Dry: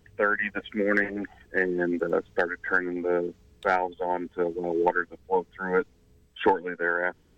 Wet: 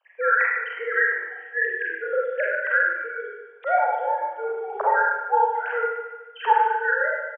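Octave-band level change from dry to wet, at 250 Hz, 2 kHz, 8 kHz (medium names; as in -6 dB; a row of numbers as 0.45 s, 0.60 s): under -20 dB, +6.0 dB, no reading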